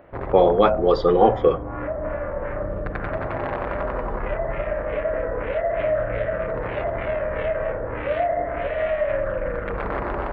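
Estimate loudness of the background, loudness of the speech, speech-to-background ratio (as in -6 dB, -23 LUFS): -26.5 LUFS, -18.5 LUFS, 8.0 dB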